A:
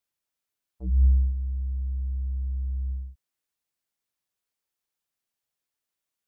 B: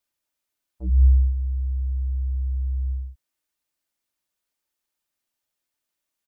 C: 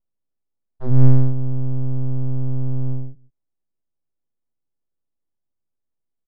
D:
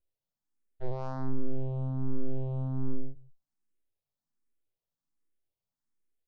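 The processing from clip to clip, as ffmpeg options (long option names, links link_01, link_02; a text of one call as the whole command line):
ffmpeg -i in.wav -af "aecho=1:1:3.3:0.32,volume=3dB" out.wav
ffmpeg -i in.wav -af "aecho=1:1:96|149:0.141|0.133,aeval=exprs='abs(val(0))':channel_layout=same,adynamicsmooth=sensitivity=8:basefreq=530,volume=8dB" out.wav
ffmpeg -i in.wav -filter_complex "[0:a]asoftclip=type=tanh:threshold=-19dB,asplit=2[link_01][link_02];[link_02]afreqshift=1.3[link_03];[link_01][link_03]amix=inputs=2:normalize=1" out.wav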